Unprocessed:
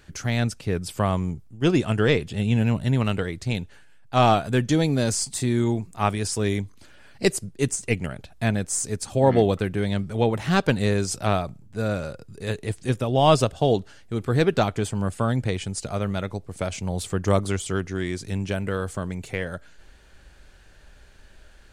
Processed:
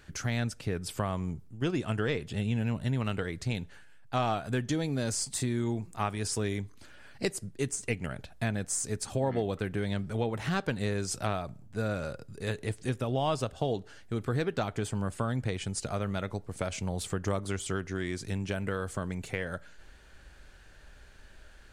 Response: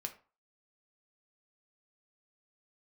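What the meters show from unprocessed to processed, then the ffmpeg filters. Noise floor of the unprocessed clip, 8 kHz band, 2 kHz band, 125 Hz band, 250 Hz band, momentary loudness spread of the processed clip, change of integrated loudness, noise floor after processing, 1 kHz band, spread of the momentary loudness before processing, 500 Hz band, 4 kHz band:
-50 dBFS, -6.0 dB, -6.5 dB, -8.0 dB, -8.5 dB, 5 LU, -8.5 dB, -53 dBFS, -9.5 dB, 10 LU, -9.5 dB, -8.0 dB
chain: -filter_complex "[0:a]equalizer=f=1.5k:w=1.5:g=2.5,acompressor=threshold=-26dB:ratio=3,asplit=2[a][b];[1:a]atrim=start_sample=2205,asetrate=31311,aresample=44100[c];[b][c]afir=irnorm=-1:irlink=0,volume=-16dB[d];[a][d]amix=inputs=2:normalize=0,volume=-4dB"

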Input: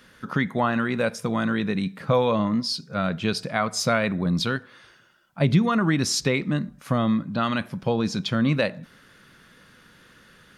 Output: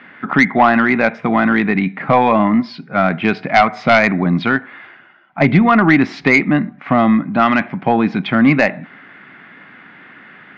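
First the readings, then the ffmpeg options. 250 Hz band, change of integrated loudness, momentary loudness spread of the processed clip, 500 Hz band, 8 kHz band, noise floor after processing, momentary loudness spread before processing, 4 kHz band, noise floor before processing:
+10.0 dB, +10.0 dB, 7 LU, +8.5 dB, under -10 dB, -43 dBFS, 6 LU, +0.5 dB, -54 dBFS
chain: -af "highpass=200,equalizer=f=280:t=q:w=4:g=4,equalizer=f=500:t=q:w=4:g=-9,equalizer=f=750:t=q:w=4:g=9,equalizer=f=2.1k:t=q:w=4:g=9,lowpass=f=2.6k:w=0.5412,lowpass=f=2.6k:w=1.3066,aeval=exprs='0.531*(cos(1*acos(clip(val(0)/0.531,-1,1)))-cos(1*PI/2))+0.00299*(cos(8*acos(clip(val(0)/0.531,-1,1)))-cos(8*PI/2))':c=same,aeval=exprs='0.562*sin(PI/2*1.78*val(0)/0.562)':c=same,volume=2.5dB"

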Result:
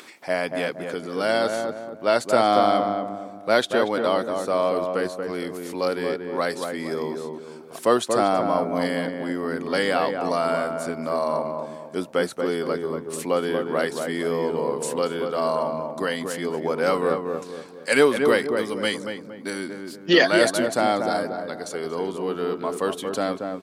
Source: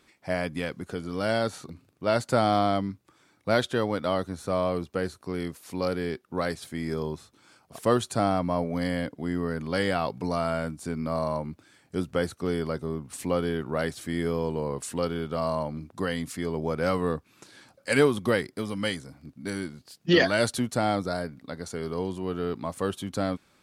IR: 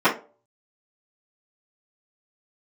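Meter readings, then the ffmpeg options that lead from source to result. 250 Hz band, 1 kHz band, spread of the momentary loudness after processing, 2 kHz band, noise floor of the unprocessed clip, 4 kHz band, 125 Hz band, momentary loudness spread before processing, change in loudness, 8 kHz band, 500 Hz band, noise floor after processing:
+2.0 dB, +6.0 dB, 12 LU, +5.5 dB, -64 dBFS, +5.0 dB, -5.5 dB, 12 LU, +4.5 dB, +5.0 dB, +6.0 dB, -41 dBFS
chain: -filter_complex "[0:a]highpass=300,asplit=2[a][b];[b]adelay=233,lowpass=f=1.2k:p=1,volume=-4dB,asplit=2[c][d];[d]adelay=233,lowpass=f=1.2k:p=1,volume=0.43,asplit=2[e][f];[f]adelay=233,lowpass=f=1.2k:p=1,volume=0.43,asplit=2[g][h];[h]adelay=233,lowpass=f=1.2k:p=1,volume=0.43,asplit=2[i][j];[j]adelay=233,lowpass=f=1.2k:p=1,volume=0.43[k];[a][c][e][g][i][k]amix=inputs=6:normalize=0,acompressor=mode=upward:threshold=-41dB:ratio=2.5,volume=5dB"

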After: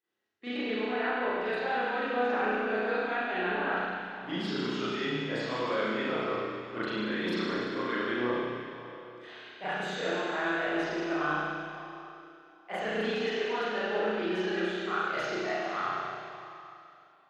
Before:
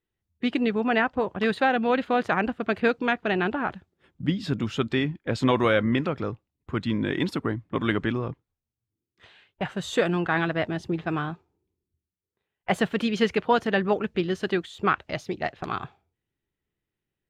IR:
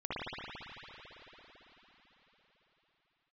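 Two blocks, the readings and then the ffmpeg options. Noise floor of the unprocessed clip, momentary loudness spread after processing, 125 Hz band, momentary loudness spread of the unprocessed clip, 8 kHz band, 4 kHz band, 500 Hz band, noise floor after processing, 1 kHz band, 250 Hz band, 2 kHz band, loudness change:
under -85 dBFS, 13 LU, -13.0 dB, 10 LU, -5.5 dB, -3.0 dB, -4.5 dB, -56 dBFS, -4.0 dB, -7.5 dB, -2.5 dB, -5.5 dB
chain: -filter_complex "[0:a]highpass=380,areverse,acompressor=threshold=-36dB:ratio=6,areverse[a];[1:a]atrim=start_sample=2205,asetrate=74970,aresample=44100[b];[a][b]afir=irnorm=-1:irlink=0,volume=6dB"

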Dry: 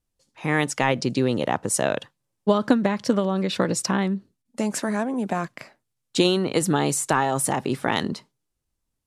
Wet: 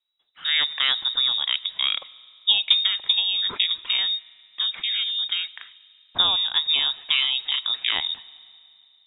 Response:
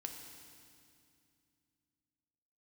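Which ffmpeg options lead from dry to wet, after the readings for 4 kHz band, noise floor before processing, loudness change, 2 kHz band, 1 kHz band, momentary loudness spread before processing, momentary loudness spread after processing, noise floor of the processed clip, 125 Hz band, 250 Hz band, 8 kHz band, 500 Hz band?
+15.0 dB, -79 dBFS, +2.5 dB, 0.0 dB, -11.5 dB, 9 LU, 9 LU, -59 dBFS, under -25 dB, under -30 dB, under -40 dB, -24.5 dB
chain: -filter_complex "[0:a]asplit=2[a][b];[1:a]atrim=start_sample=2205[c];[b][c]afir=irnorm=-1:irlink=0,volume=-11dB[d];[a][d]amix=inputs=2:normalize=0,lowpass=f=3.3k:t=q:w=0.5098,lowpass=f=3.3k:t=q:w=0.6013,lowpass=f=3.3k:t=q:w=0.9,lowpass=f=3.3k:t=q:w=2.563,afreqshift=-3900,volume=-2dB"

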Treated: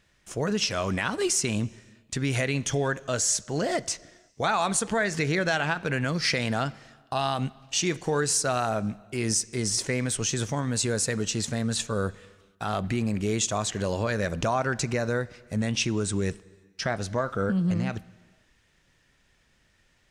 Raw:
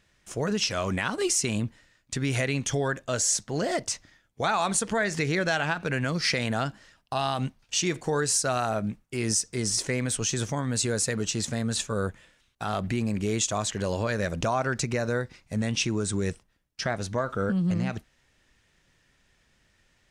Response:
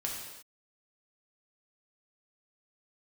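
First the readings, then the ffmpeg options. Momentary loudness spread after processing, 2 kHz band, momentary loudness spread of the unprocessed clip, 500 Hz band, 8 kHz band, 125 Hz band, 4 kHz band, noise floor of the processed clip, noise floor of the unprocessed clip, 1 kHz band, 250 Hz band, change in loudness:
7 LU, +0.5 dB, 7 LU, +0.5 dB, 0.0 dB, +0.5 dB, 0.0 dB, -65 dBFS, -67 dBFS, +0.5 dB, +0.5 dB, +0.5 dB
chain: -filter_complex "[0:a]asplit=2[a][b];[b]lowpass=6k[c];[1:a]atrim=start_sample=2205,asetrate=29547,aresample=44100[d];[c][d]afir=irnorm=-1:irlink=0,volume=-24dB[e];[a][e]amix=inputs=2:normalize=0"

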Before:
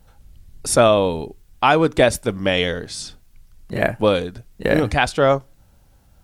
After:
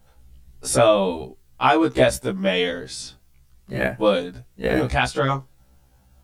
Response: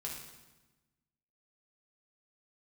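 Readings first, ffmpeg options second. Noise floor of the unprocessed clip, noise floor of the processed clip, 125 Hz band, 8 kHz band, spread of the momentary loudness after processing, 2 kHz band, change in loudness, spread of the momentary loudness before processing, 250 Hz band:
-54 dBFS, -57 dBFS, -2.5 dB, -2.5 dB, 16 LU, -2.5 dB, -2.5 dB, 16 LU, -1.5 dB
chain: -af "afftfilt=real='re*1.73*eq(mod(b,3),0)':imag='im*1.73*eq(mod(b,3),0)':win_size=2048:overlap=0.75"

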